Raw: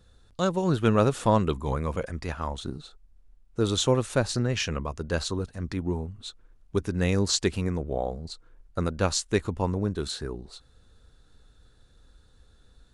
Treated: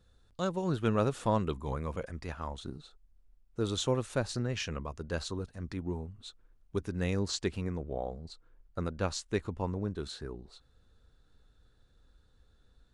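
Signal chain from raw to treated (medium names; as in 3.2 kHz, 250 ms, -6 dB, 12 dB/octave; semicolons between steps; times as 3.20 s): treble shelf 6.8 kHz -3 dB, from 7.14 s -9 dB; trim -7 dB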